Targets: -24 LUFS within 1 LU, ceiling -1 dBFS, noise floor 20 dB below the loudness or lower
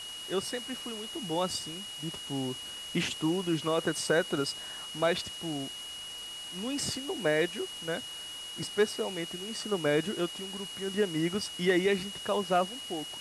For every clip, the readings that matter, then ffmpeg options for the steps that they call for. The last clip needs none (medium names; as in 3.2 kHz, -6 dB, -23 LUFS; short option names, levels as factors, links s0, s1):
steady tone 2.9 kHz; tone level -40 dBFS; noise floor -42 dBFS; noise floor target -52 dBFS; loudness -32.0 LUFS; peak level -15.5 dBFS; loudness target -24.0 LUFS
-> -af "bandreject=f=2900:w=30"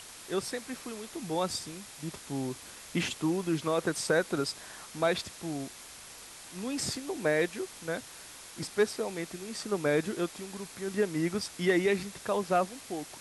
steady tone not found; noise floor -48 dBFS; noise floor target -53 dBFS
-> -af "afftdn=nr=6:nf=-48"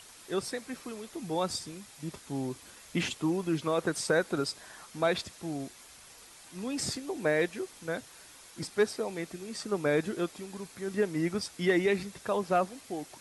noise floor -53 dBFS; loudness -32.5 LUFS; peak level -16.0 dBFS; loudness target -24.0 LUFS
-> -af "volume=2.66"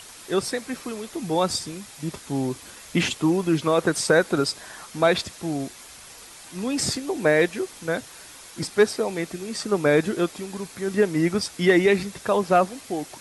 loudness -24.0 LUFS; peak level -7.5 dBFS; noise floor -45 dBFS